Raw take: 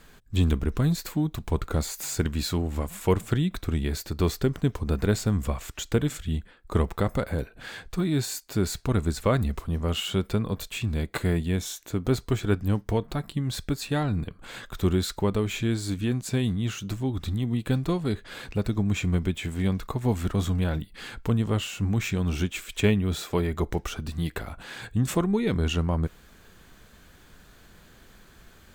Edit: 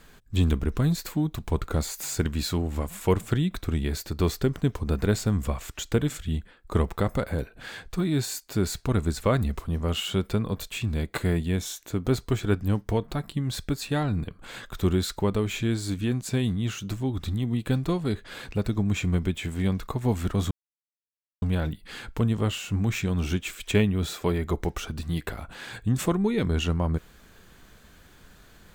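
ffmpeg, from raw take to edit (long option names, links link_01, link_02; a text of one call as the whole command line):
ffmpeg -i in.wav -filter_complex "[0:a]asplit=2[link_01][link_02];[link_01]atrim=end=20.51,asetpts=PTS-STARTPTS,afade=type=out:start_time=20.506:duration=0.004:curve=hsin,apad=pad_dur=0.91[link_03];[link_02]atrim=start=20.51,asetpts=PTS-STARTPTS,afade=type=in:duration=0.004:curve=hsin[link_04];[link_03][link_04]concat=n=2:v=0:a=1" out.wav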